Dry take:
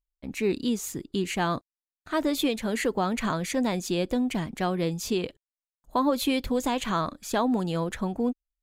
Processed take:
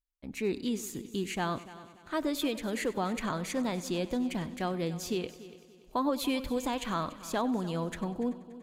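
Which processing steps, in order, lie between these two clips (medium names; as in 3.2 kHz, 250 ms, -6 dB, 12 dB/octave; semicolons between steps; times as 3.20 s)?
multi-head delay 96 ms, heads first and third, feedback 51%, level -17.5 dB; trim -5.5 dB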